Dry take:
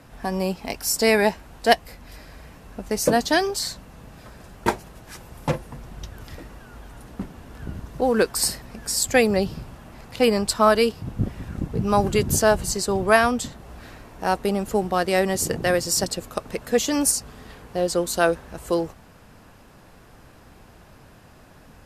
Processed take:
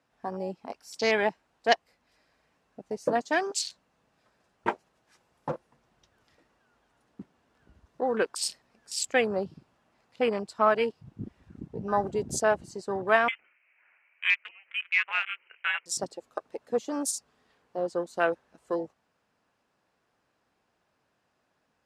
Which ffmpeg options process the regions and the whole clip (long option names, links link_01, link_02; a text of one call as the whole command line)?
ffmpeg -i in.wav -filter_complex "[0:a]asettb=1/sr,asplit=3[link_01][link_02][link_03];[link_01]atrim=end=3.214[link_04];[link_02]atrim=start=3.21:end=3.62,asetpts=PTS-STARTPTS,afade=type=in:duration=0.004:curve=qsin,afade=type=out:start_time=0.406:duration=0.004:curve=qsin,highpass=170,equalizer=frequency=7100:width_type=o:width=0.62:gain=9.5[link_05];[link_03]atrim=start=3.616[link_06];[link_04][link_05]acrossfade=duration=0.004:curve1=hsin:curve2=qsin[link_07];[link_07][link_06]acrossfade=duration=0.004:curve1=qsin:curve2=hsin,asettb=1/sr,asplit=3[link_08][link_09][link_10];[link_08]atrim=end=13.284[link_11];[link_09]atrim=start=13.28:end=15.86,asetpts=PTS-STARTPTS,afade=type=in:duration=0.004:curve=qsin,afade=type=out:start_time=2.576:duration=0.004:curve=qsin,highpass=frequency=1000:width_type=q:width=2.3,lowpass=frequency=2800:width_type=q:width=0.5098,lowpass=frequency=2800:width_type=q:width=0.6013,lowpass=frequency=2800:width_type=q:width=0.9,lowpass=frequency=2800:width_type=q:width=2.563,afreqshift=-3300[link_12];[link_10]atrim=start=15.856[link_13];[link_11][link_12]acrossfade=duration=0.004:curve1=hsin:curve2=qsin[link_14];[link_14][link_13]acrossfade=duration=0.004:curve1=qsin:curve2=hsin,highpass=frequency=420:poles=1,afwtdn=0.0398,lowpass=7600,volume=-4.5dB" out.wav